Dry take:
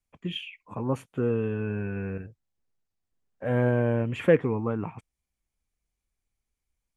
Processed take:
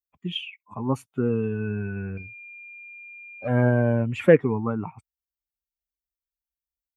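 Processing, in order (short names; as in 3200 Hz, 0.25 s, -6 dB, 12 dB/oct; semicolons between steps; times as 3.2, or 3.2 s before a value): per-bin expansion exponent 1.5; HPF 70 Hz; 2.17–3.48 pulse-width modulation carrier 2400 Hz; gain +5.5 dB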